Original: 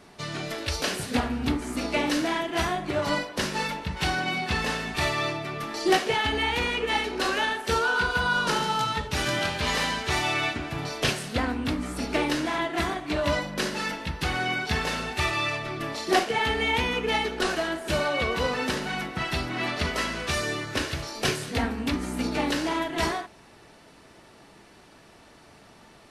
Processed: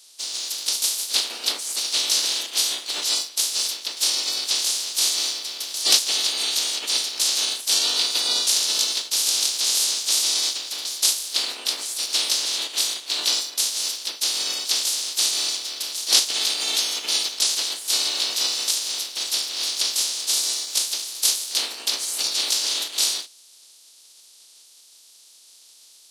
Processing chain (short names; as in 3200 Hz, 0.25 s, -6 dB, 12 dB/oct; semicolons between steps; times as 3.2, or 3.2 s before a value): spectral limiter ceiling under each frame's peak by 28 dB; resonant high shelf 2800 Hz +13.5 dB, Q 1.5; in parallel at -4 dB: crossover distortion -27 dBFS; on the sum: HPF 280 Hz 24 dB/oct; gain -11.5 dB